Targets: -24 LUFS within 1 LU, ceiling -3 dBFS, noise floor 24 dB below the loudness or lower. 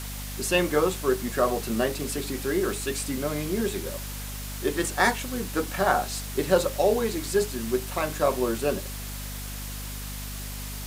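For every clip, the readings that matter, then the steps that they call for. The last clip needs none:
hum 50 Hz; harmonics up to 250 Hz; hum level -34 dBFS; noise floor -35 dBFS; noise floor target -52 dBFS; loudness -27.5 LUFS; peak -7.5 dBFS; loudness target -24.0 LUFS
-> notches 50/100/150/200/250 Hz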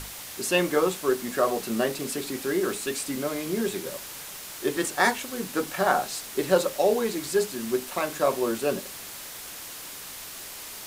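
hum none; noise floor -40 dBFS; noise floor target -52 dBFS
-> denoiser 12 dB, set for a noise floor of -40 dBFS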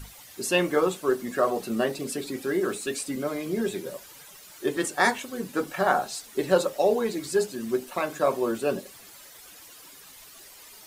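noise floor -49 dBFS; noise floor target -51 dBFS
-> denoiser 6 dB, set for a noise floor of -49 dBFS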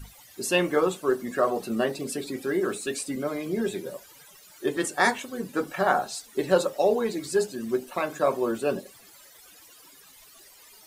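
noise floor -52 dBFS; loudness -27.0 LUFS; peak -7.5 dBFS; loudness target -24.0 LUFS
-> gain +3 dB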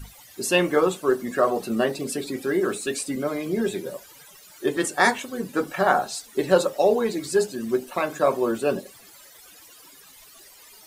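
loudness -24.0 LUFS; peak -4.5 dBFS; noise floor -49 dBFS

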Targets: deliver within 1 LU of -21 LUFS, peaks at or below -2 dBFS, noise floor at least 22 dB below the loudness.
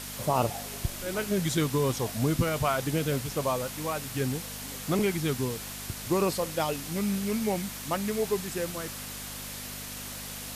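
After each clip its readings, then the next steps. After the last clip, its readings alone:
hum 50 Hz; harmonics up to 250 Hz; hum level -43 dBFS; noise floor -39 dBFS; noise floor target -52 dBFS; loudness -30.0 LUFS; peak -13.5 dBFS; loudness target -21.0 LUFS
-> de-hum 50 Hz, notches 5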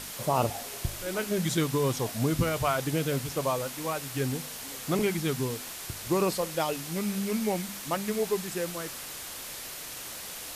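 hum none; noise floor -40 dBFS; noise floor target -53 dBFS
-> denoiser 13 dB, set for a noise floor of -40 dBFS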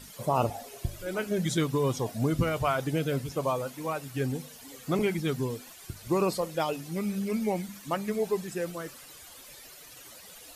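noise floor -49 dBFS; noise floor target -53 dBFS
-> denoiser 6 dB, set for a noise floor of -49 dBFS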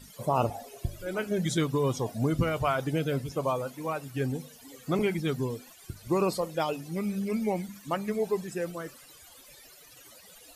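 noise floor -53 dBFS; loudness -30.5 LUFS; peak -14.0 dBFS; loudness target -21.0 LUFS
-> gain +9.5 dB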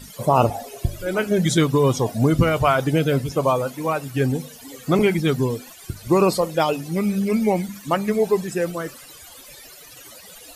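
loudness -21.0 LUFS; peak -4.5 dBFS; noise floor -44 dBFS

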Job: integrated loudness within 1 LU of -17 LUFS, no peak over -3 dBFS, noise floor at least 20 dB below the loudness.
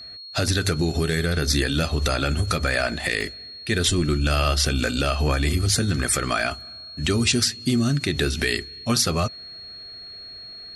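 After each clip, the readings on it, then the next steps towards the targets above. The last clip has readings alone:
dropouts 2; longest dropout 1.1 ms; steady tone 4300 Hz; tone level -37 dBFS; loudness -22.5 LUFS; peak -9.0 dBFS; loudness target -17.0 LUFS
-> interpolate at 0.48/3.21, 1.1 ms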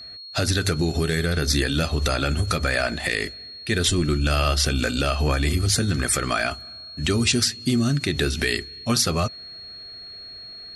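dropouts 0; steady tone 4300 Hz; tone level -37 dBFS
-> notch 4300 Hz, Q 30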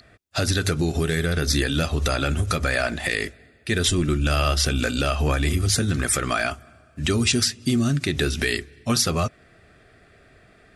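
steady tone none; loudness -23.0 LUFS; peak -8.0 dBFS; loudness target -17.0 LUFS
-> gain +6 dB; limiter -3 dBFS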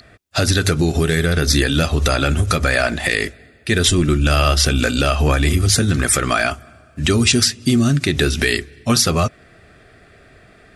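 loudness -17.0 LUFS; peak -3.0 dBFS; noise floor -49 dBFS

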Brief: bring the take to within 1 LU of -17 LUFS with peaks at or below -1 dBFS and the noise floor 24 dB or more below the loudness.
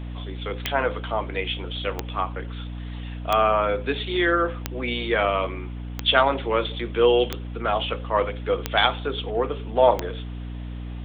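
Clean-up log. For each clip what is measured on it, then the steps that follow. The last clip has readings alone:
clicks 8; hum 60 Hz; harmonics up to 300 Hz; hum level -31 dBFS; loudness -24.0 LUFS; peak -3.0 dBFS; loudness target -17.0 LUFS
-> de-click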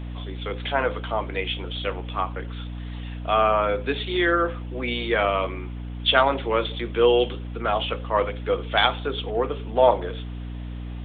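clicks 0; hum 60 Hz; harmonics up to 300 Hz; hum level -31 dBFS
-> de-hum 60 Hz, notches 5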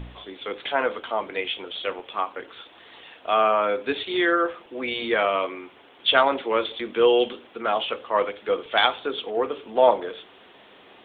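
hum none; loudness -24.0 LUFS; peak -3.0 dBFS; loudness target -17.0 LUFS
-> gain +7 dB; limiter -1 dBFS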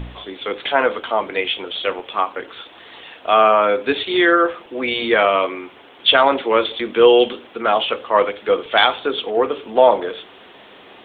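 loudness -17.5 LUFS; peak -1.0 dBFS; noise floor -44 dBFS

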